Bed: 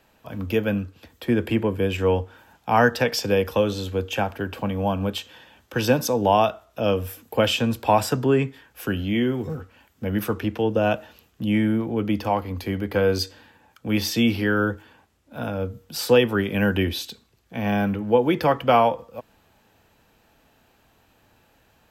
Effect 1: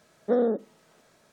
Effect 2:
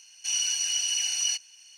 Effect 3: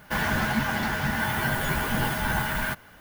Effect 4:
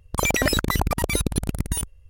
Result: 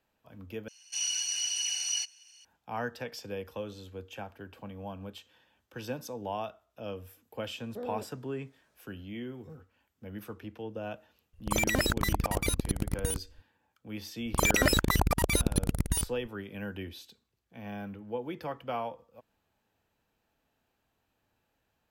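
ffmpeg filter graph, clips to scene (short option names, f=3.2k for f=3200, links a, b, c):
-filter_complex "[4:a]asplit=2[a][b];[0:a]volume=-17.5dB[c];[1:a]alimiter=limit=-19dB:level=0:latency=1:release=71[d];[c]asplit=2[e][f];[e]atrim=end=0.684[g];[2:a]atrim=end=1.77,asetpts=PTS-STARTPTS,volume=-4.5dB[h];[f]atrim=start=2.446[i];[d]atrim=end=1.32,asetpts=PTS-STARTPTS,volume=-12.5dB,afade=t=in:d=0.004:c=hsin,afade=t=out:st=1.316:d=0.004:c=hsin,adelay=7470[j];[a]atrim=end=2.09,asetpts=PTS-STARTPTS,volume=-6.5dB,afade=t=in:d=0.004:c=hsin,afade=t=out:st=2.086:d=0.004:c=hsin,adelay=11330[k];[b]atrim=end=2.09,asetpts=PTS-STARTPTS,volume=-3.5dB,afade=t=in:d=0.004:c=hsin,afade=t=out:st=2.086:d=0.004:c=hsin,adelay=14200[l];[g][h]acrossfade=d=0.004:c1=hsin:c2=hsin[m];[m][i]acrossfade=d=0.004:c1=hsin:c2=hsin[n];[n][j][k][l]amix=inputs=4:normalize=0"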